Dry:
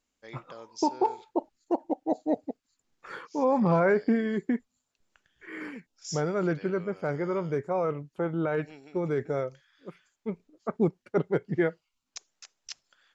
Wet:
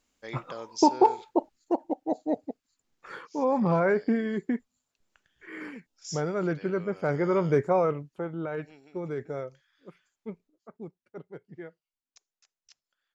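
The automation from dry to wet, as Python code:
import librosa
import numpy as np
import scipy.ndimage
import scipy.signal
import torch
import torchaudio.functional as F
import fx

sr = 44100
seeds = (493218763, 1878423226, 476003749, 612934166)

y = fx.gain(x, sr, db=fx.line((1.03, 6.0), (1.96, -1.0), (6.56, -1.0), (7.64, 7.0), (8.29, -5.0), (10.28, -5.0), (10.69, -17.0)))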